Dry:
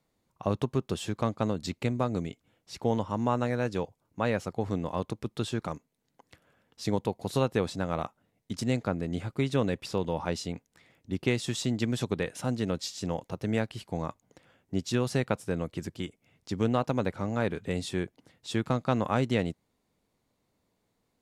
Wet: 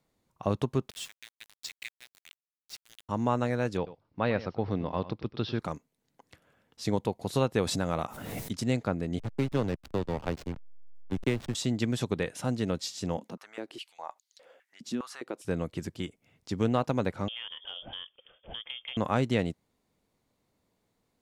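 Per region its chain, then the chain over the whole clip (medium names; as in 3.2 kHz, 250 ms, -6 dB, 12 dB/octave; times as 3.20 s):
0.90–3.09 s: steep high-pass 1.7 kHz 72 dB/octave + small samples zeroed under -42.5 dBFS
3.77–5.59 s: steep low-pass 5.4 kHz 72 dB/octave + delay 97 ms -15.5 dB
7.58–8.52 s: treble shelf 7.6 kHz +8 dB + swell ahead of each attack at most 35 dB/s
9.19–11.55 s: hysteresis with a dead band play -26.5 dBFS + three bands compressed up and down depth 40%
13.17–15.45 s: compression 2:1, threshold -44 dBFS + step-sequenced high-pass 4.9 Hz 220–4200 Hz
17.28–18.97 s: frequency inversion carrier 3.4 kHz + peaking EQ 510 Hz +13.5 dB 0.6 oct + compression 4:1, threshold -38 dBFS
whole clip: none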